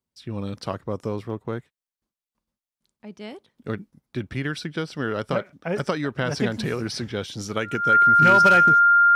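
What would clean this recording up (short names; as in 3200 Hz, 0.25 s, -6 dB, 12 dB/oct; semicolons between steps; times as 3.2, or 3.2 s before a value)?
clip repair -9 dBFS; notch 1400 Hz, Q 30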